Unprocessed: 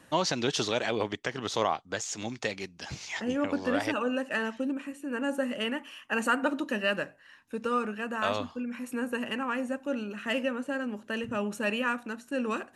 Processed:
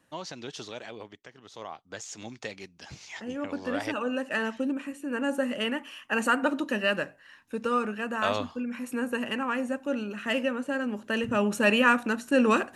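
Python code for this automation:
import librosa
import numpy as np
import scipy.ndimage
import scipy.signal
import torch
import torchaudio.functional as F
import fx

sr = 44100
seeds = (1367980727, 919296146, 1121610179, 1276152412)

y = fx.gain(x, sr, db=fx.line((0.81, -11.0), (1.43, -18.0), (2.01, -5.5), (3.27, -5.5), (4.48, 2.0), (10.65, 2.0), (11.98, 9.0)))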